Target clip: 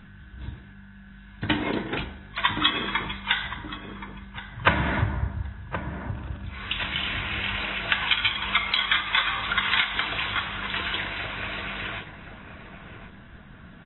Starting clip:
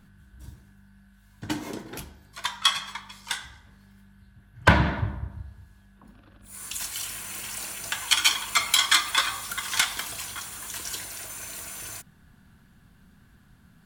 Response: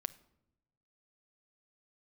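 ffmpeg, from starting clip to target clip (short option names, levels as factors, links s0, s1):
-filter_complex "[0:a]equalizer=f=2200:t=o:w=1.3:g=5.5,acompressor=threshold=0.0501:ratio=16,asplit=2[s0][s1];[s1]adelay=1073,lowpass=f=850:p=1,volume=0.447,asplit=2[s2][s3];[s3]adelay=1073,lowpass=f=850:p=1,volume=0.44,asplit=2[s4][s5];[s5]adelay=1073,lowpass=f=850:p=1,volume=0.44,asplit=2[s6][s7];[s7]adelay=1073,lowpass=f=850:p=1,volume=0.44,asplit=2[s8][s9];[s9]adelay=1073,lowpass=f=850:p=1,volume=0.44[s10];[s0][s2][s4][s6][s8][s10]amix=inputs=6:normalize=0,volume=2.37" -ar 24000 -c:a aac -b:a 16k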